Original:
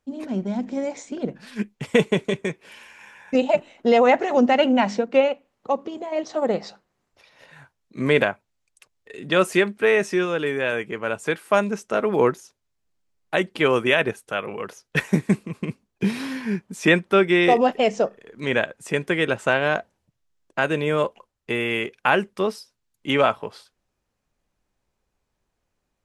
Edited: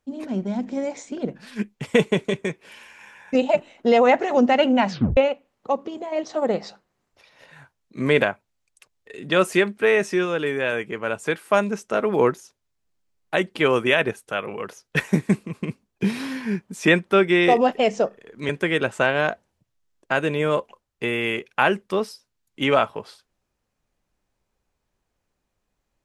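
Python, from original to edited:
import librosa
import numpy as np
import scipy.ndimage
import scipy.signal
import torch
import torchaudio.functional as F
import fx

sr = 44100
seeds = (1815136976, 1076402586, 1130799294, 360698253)

y = fx.edit(x, sr, fx.tape_stop(start_s=4.89, length_s=0.28),
    fx.cut(start_s=18.49, length_s=0.47), tone=tone)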